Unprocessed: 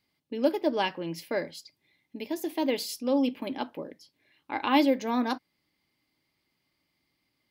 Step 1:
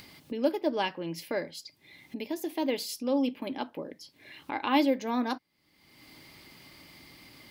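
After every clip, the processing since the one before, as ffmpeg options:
-af "acompressor=mode=upward:threshold=-29dB:ratio=2.5,volume=-2dB"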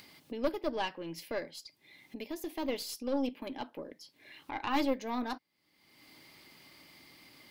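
-af "lowshelf=f=130:g=-10,aeval=exprs='(tanh(10*val(0)+0.7)-tanh(0.7))/10':c=same"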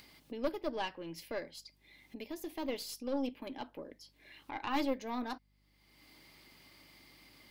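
-af "aeval=exprs='val(0)+0.000398*(sin(2*PI*50*n/s)+sin(2*PI*2*50*n/s)/2+sin(2*PI*3*50*n/s)/3+sin(2*PI*4*50*n/s)/4+sin(2*PI*5*50*n/s)/5)':c=same,volume=-3dB"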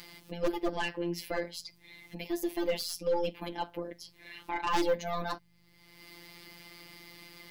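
-af "afftfilt=real='hypot(re,im)*cos(PI*b)':imag='0':win_size=1024:overlap=0.75,aeval=exprs='0.0944*sin(PI/2*2.51*val(0)/0.0944)':c=same"

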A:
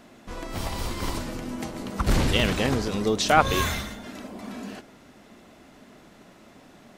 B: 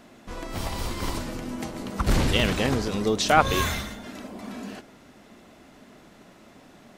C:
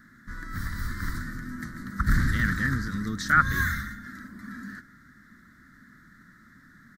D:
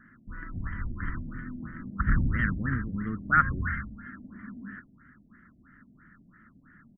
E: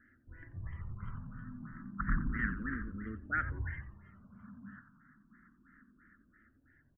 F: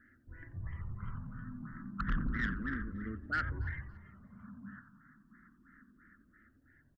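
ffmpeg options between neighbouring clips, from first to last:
-af anull
-af "firequalizer=gain_entry='entry(160,0);entry(270,-5);entry(420,-22);entry(770,-29);entry(1300,3);entry(1800,9);entry(2600,-29);entry(3800,-9);entry(9900,-9);entry(14000,-1)':delay=0.05:min_phase=1"
-af "afftfilt=real='re*lt(b*sr/1024,760*pow(3300/760,0.5+0.5*sin(2*PI*3*pts/sr)))':imag='im*lt(b*sr/1024,760*pow(3300/760,0.5+0.5*sin(2*PI*3*pts/sr)))':win_size=1024:overlap=0.75,volume=-1.5dB"
-filter_complex "[0:a]asplit=4[a][b][c][d];[b]adelay=89,afreqshift=-140,volume=-12dB[e];[c]adelay=178,afreqshift=-280,volume=-22.2dB[f];[d]adelay=267,afreqshift=-420,volume=-32.3dB[g];[a][e][f][g]amix=inputs=4:normalize=0,asplit=2[h][i];[i]afreqshift=0.31[j];[h][j]amix=inputs=2:normalize=1,volume=-6dB"
-af "asoftclip=type=tanh:threshold=-27dB,aecho=1:1:281|562:0.0668|0.0221,volume=1.5dB"

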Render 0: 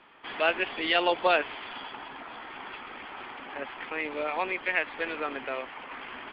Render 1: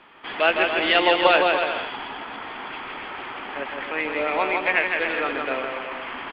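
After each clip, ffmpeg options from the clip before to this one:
-af "aecho=1:1:160|280|370|437.5|488.1:0.631|0.398|0.251|0.158|0.1,volume=5.5dB"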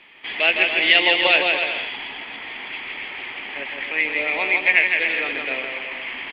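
-af "highshelf=f=1.7k:t=q:w=3:g=6.5,volume=-3.5dB"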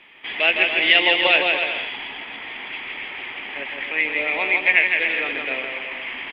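-af "bandreject=f=4.4k:w=6.6"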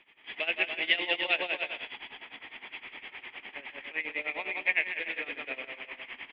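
-af "tremolo=f=9.8:d=0.85,volume=-9dB"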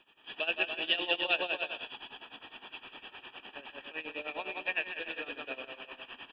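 -af "asuperstop=centerf=2100:order=4:qfactor=2.8"

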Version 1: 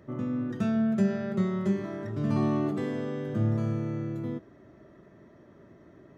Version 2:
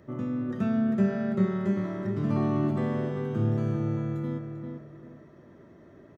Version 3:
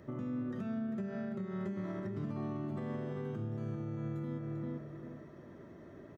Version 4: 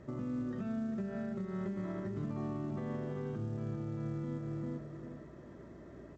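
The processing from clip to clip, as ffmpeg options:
-filter_complex "[0:a]acrossover=split=2900[a][b];[b]acompressor=threshold=-60dB:ratio=4:attack=1:release=60[c];[a][c]amix=inputs=2:normalize=0,asplit=2[d][e];[e]adelay=394,lowpass=f=2.5k:p=1,volume=-5dB,asplit=2[f][g];[g]adelay=394,lowpass=f=2.5k:p=1,volume=0.31,asplit=2[h][i];[i]adelay=394,lowpass=f=2.5k:p=1,volume=0.31,asplit=2[j][k];[k]adelay=394,lowpass=f=2.5k:p=1,volume=0.31[l];[f][h][j][l]amix=inputs=4:normalize=0[m];[d][m]amix=inputs=2:normalize=0"
-af "acompressor=threshold=-31dB:ratio=5,alimiter=level_in=6.5dB:limit=-24dB:level=0:latency=1:release=259,volume=-6.5dB"
-af "aemphasis=mode=reproduction:type=cd,aeval=exprs='val(0)+0.000891*(sin(2*PI*60*n/s)+sin(2*PI*2*60*n/s)/2+sin(2*PI*3*60*n/s)/3+sin(2*PI*4*60*n/s)/4+sin(2*PI*5*60*n/s)/5)':c=same" -ar 16000 -c:a pcm_mulaw

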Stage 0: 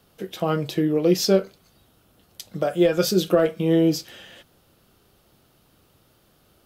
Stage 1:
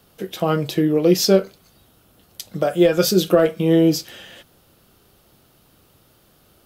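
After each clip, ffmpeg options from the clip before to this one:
-af "highshelf=f=9.3k:g=4,volume=3.5dB"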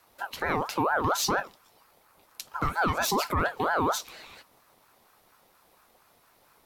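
-af "alimiter=limit=-12dB:level=0:latency=1:release=12,aeval=exprs='val(0)*sin(2*PI*890*n/s+890*0.35/4.3*sin(2*PI*4.3*n/s))':c=same,volume=-3.5dB"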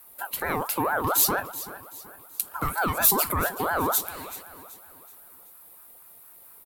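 -af "aexciter=amount=7.1:drive=5.3:freq=8.2k,aecho=1:1:380|760|1140|1520:0.178|0.0729|0.0299|0.0123"

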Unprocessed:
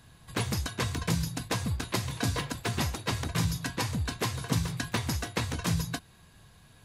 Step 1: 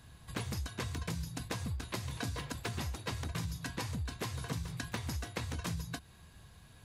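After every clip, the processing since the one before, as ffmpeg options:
-af "equalizer=f=66:w=2:g=7,acompressor=threshold=-33dB:ratio=6,volume=-2dB"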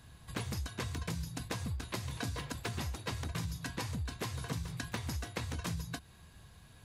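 -af anull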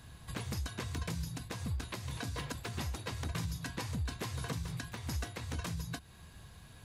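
-af "alimiter=level_in=6dB:limit=-24dB:level=0:latency=1:release=275,volume=-6dB,volume=3dB"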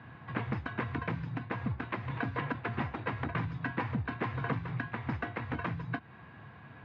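-af "highpass=f=120:w=0.5412,highpass=f=120:w=1.3066,equalizer=f=170:t=q:w=4:g=-7,equalizer=f=400:t=q:w=4:g=-4,equalizer=f=570:t=q:w=4:g=-4,lowpass=f=2.2k:w=0.5412,lowpass=f=2.2k:w=1.3066,volume=9dB"

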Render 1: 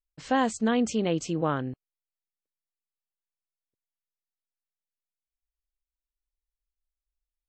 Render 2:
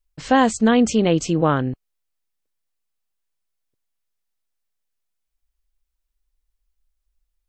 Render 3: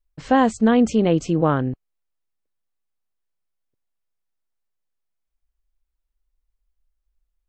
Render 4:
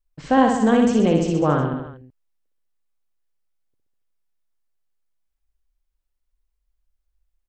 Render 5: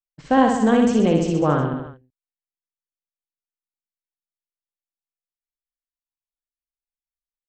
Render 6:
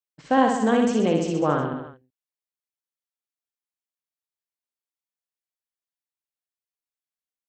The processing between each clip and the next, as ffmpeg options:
-af "lowshelf=f=61:g=10,volume=8.5dB"
-af "highshelf=f=2.2k:g=-9"
-af "aecho=1:1:60|126|198.6|278.5|366.3:0.631|0.398|0.251|0.158|0.1,volume=-1.5dB"
-af "agate=range=-33dB:threshold=-33dB:ratio=3:detection=peak"
-af "highpass=f=230:p=1,volume=-1.5dB"

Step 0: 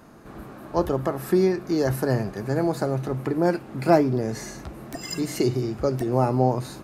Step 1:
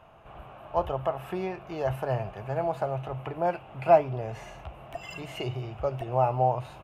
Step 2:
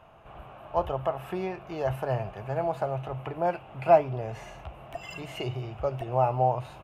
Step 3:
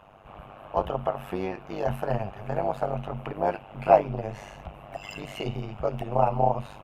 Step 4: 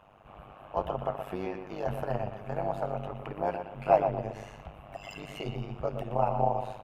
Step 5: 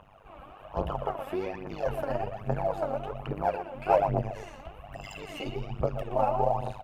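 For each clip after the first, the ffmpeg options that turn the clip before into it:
-af "firequalizer=gain_entry='entry(100,0);entry(250,-17);entry(660,5);entry(1800,-6);entry(2800,8);entry(4300,-15)':delay=0.05:min_phase=1,volume=-3dB"
-af anull
-af "tremolo=f=100:d=0.919,volume=5dB"
-filter_complex "[0:a]asplit=2[a][b];[b]adelay=120,lowpass=f=2.5k:p=1,volume=-7dB,asplit=2[c][d];[d]adelay=120,lowpass=f=2.5k:p=1,volume=0.36,asplit=2[e][f];[f]adelay=120,lowpass=f=2.5k:p=1,volume=0.36,asplit=2[g][h];[h]adelay=120,lowpass=f=2.5k:p=1,volume=0.36[i];[a][c][e][g][i]amix=inputs=5:normalize=0,volume=-5dB"
-af "aphaser=in_gain=1:out_gain=1:delay=3.9:decay=0.65:speed=1.2:type=triangular"

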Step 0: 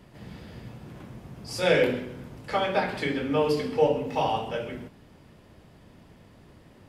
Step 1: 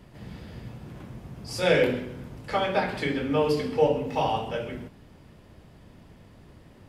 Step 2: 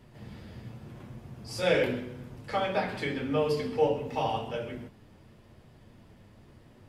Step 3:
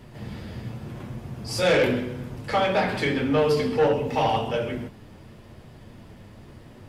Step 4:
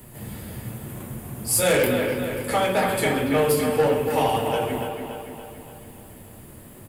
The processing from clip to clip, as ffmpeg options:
-af "lowshelf=f=100:g=5.5"
-af "flanger=delay=8.1:depth=1.4:regen=-39:speed=0.88:shape=triangular"
-af "asoftclip=type=tanh:threshold=-23.5dB,volume=9dB"
-filter_complex "[0:a]acrossover=split=130|4200[a][b][c];[b]aecho=1:1:285|570|855|1140|1425|1710|1995:0.531|0.287|0.155|0.0836|0.0451|0.0244|0.0132[d];[c]aexciter=amount=8.5:drive=7.4:freq=7.7k[e];[a][d][e]amix=inputs=3:normalize=0"

